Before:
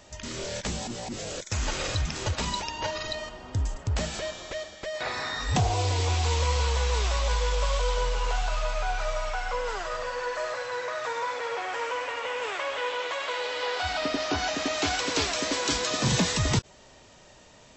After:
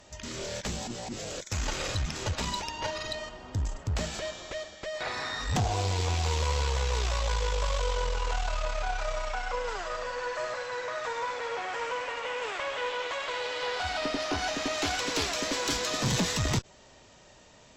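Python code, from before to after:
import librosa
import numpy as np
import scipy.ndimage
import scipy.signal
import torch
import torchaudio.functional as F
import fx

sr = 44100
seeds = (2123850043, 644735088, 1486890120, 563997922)

y = fx.tube_stage(x, sr, drive_db=20.0, bias=0.5)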